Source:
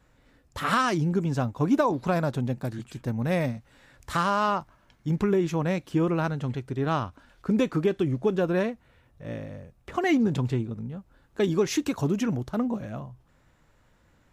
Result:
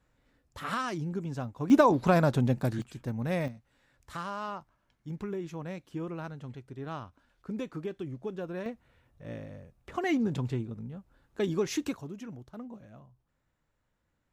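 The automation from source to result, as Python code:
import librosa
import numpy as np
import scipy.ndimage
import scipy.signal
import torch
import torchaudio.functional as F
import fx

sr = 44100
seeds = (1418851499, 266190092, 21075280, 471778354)

y = fx.gain(x, sr, db=fx.steps((0.0, -9.0), (1.7, 2.0), (2.82, -5.0), (3.48, -12.5), (8.66, -5.5), (11.97, -16.0)))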